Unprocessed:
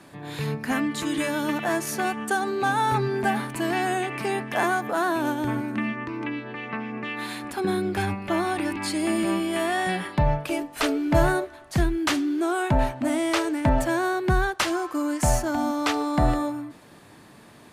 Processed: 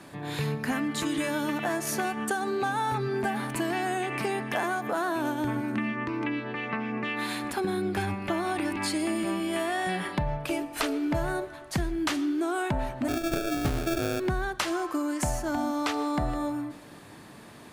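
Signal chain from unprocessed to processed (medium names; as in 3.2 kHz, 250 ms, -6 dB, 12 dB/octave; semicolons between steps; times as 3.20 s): compression 6:1, threshold -27 dBFS, peak gain reduction 12 dB; 13.08–14.20 s: sample-rate reducer 1 kHz, jitter 0%; reverberation RT60 0.80 s, pre-delay 75 ms, DRR 17.5 dB; trim +1.5 dB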